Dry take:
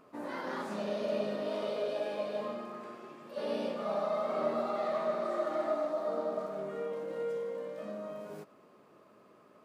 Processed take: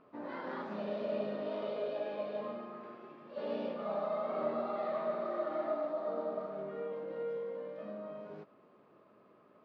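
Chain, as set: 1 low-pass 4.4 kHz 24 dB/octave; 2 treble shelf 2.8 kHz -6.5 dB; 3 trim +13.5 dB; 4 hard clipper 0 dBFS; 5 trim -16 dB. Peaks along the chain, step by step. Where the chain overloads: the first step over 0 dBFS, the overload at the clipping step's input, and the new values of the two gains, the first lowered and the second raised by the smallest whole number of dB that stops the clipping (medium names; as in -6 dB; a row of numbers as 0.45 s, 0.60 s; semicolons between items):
-19.0 dBFS, -19.5 dBFS, -6.0 dBFS, -6.0 dBFS, -22.0 dBFS; nothing clips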